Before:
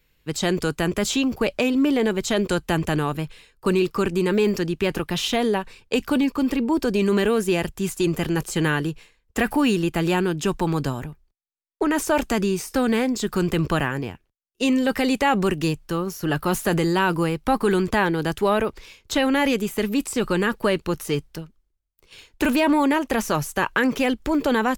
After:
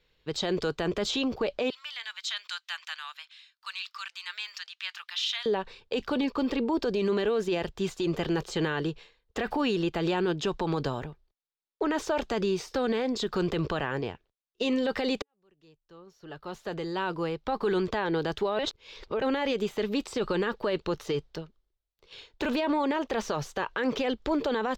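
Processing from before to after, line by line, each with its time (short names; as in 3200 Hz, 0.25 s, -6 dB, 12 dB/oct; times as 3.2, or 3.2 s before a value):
1.7–5.46 Bessel high-pass 2000 Hz, order 6
15.22–18.07 fade in quadratic
18.59–19.22 reverse
whole clip: EQ curve 280 Hz 0 dB, 440 Hz +8 dB, 2500 Hz +2 dB, 3700 Hz +9 dB, 15000 Hz -13 dB; limiter -13 dBFS; bell 10000 Hz -11 dB 0.62 oct; gain -6.5 dB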